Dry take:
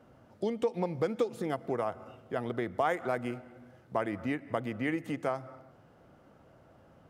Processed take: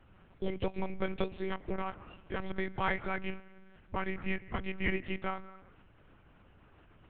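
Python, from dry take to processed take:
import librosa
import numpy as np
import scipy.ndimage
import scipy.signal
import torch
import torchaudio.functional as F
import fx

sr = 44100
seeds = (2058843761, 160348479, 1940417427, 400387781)

y = fx.graphic_eq_15(x, sr, hz=(250, 630, 2500), db=(-3, -11, 7))
y = fx.lpc_monotone(y, sr, seeds[0], pitch_hz=190.0, order=8)
y = y * librosa.db_to_amplitude(1.5)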